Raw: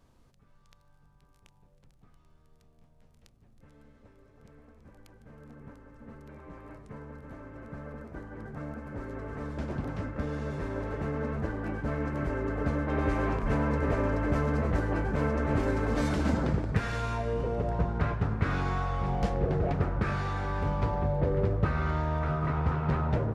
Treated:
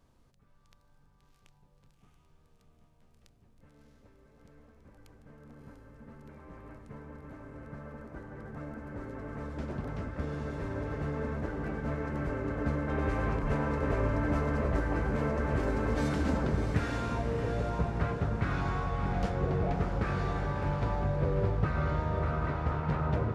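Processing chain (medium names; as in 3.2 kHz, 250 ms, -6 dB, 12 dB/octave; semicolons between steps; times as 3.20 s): echo that smears into a reverb 652 ms, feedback 49%, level -6 dB; trim -3 dB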